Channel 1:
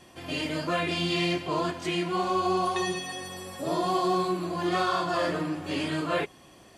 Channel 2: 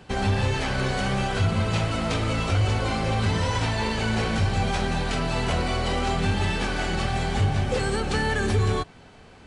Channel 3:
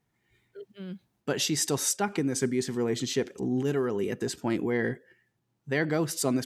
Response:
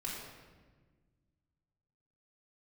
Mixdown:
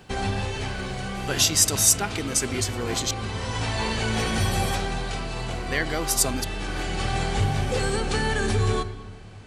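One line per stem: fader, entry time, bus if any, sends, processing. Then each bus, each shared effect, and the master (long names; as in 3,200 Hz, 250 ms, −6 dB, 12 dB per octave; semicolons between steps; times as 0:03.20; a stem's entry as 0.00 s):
−2.5 dB, 1.15 s, no send, compressor whose output falls as the input rises −40 dBFS, ratio −1
−2.5 dB, 0.00 s, send −9.5 dB, automatic ducking −13 dB, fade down 1.10 s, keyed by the third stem
+0.5 dB, 0.00 s, muted 0:03.11–0:05.50, no send, tilt shelving filter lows −5.5 dB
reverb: on, RT60 1.4 s, pre-delay 3 ms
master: high-shelf EQ 4,600 Hz +6 dB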